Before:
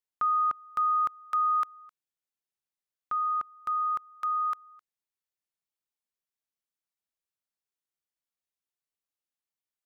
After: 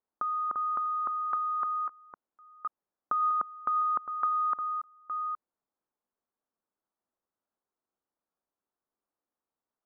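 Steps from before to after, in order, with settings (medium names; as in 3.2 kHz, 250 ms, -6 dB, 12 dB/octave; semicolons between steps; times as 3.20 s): chunks repeated in reverse 535 ms, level -12.5 dB; low-pass 1.3 kHz 24 dB/octave; compressor with a negative ratio -34 dBFS, ratio -1; resonant low shelf 180 Hz -6 dB, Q 1.5; trim +5.5 dB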